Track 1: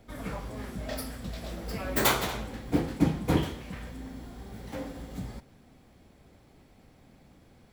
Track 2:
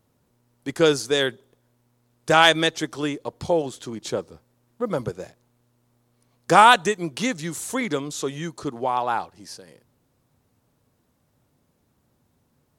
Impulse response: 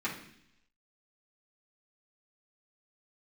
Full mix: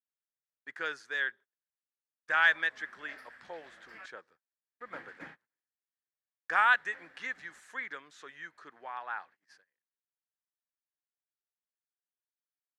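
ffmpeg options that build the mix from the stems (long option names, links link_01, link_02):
-filter_complex "[0:a]adelay=2200,volume=1dB,asplit=3[link_01][link_02][link_03];[link_01]atrim=end=4.06,asetpts=PTS-STARTPTS,afade=type=out:start_time=4.056:duration=0.004:curve=hsin[link_04];[link_02]atrim=start=4.06:end=4.7,asetpts=PTS-STARTPTS,volume=0[link_05];[link_03]atrim=start=4.7,asetpts=PTS-STARTPTS,afade=type=in:duration=0.004:curve=hsin[link_06];[link_04][link_05][link_06]concat=n=3:v=0:a=1[link_07];[1:a]volume=-1dB,asplit=2[link_08][link_09];[link_09]apad=whole_len=437616[link_10];[link_07][link_10]sidechaingate=range=-33dB:threshold=-45dB:ratio=16:detection=peak[link_11];[link_11][link_08]amix=inputs=2:normalize=0,agate=range=-23dB:threshold=-41dB:ratio=16:detection=peak,bandpass=frequency=1700:width_type=q:width=4.9:csg=0"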